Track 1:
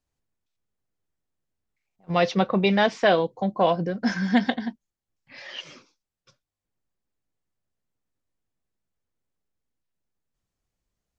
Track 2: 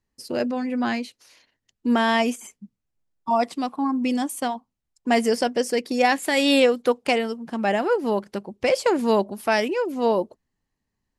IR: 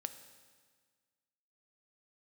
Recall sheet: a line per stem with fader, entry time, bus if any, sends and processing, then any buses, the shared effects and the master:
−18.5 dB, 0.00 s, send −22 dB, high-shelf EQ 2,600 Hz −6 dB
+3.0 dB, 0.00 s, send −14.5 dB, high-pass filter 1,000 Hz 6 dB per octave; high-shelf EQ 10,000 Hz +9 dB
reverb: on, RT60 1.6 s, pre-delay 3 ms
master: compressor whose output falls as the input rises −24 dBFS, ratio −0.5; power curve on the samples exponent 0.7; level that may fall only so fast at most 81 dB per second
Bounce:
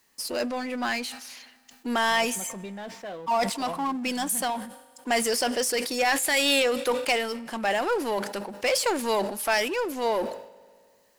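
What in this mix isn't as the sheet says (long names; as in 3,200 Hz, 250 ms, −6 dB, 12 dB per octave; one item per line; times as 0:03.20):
stem 1 −18.5 dB → −28.0 dB
stem 2 +3.0 dB → −4.0 dB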